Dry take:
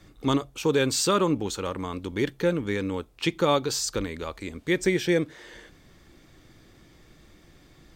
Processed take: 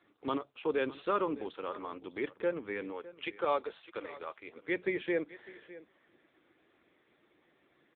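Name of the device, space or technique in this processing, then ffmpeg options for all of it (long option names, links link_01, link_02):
satellite phone: -filter_complex "[0:a]bandreject=frequency=60:width_type=h:width=6,bandreject=frequency=120:width_type=h:width=6,bandreject=frequency=180:width_type=h:width=6,asplit=3[link_01][link_02][link_03];[link_01]afade=type=out:start_time=2.91:duration=0.02[link_04];[link_02]bass=frequency=250:gain=-14,treble=frequency=4000:gain=-1,afade=type=in:start_time=2.91:duration=0.02,afade=type=out:start_time=4.55:duration=0.02[link_05];[link_03]afade=type=in:start_time=4.55:duration=0.02[link_06];[link_04][link_05][link_06]amix=inputs=3:normalize=0,highpass=370,lowpass=3200,aecho=1:1:607:0.133,volume=-5.5dB" -ar 8000 -c:a libopencore_amrnb -b:a 6700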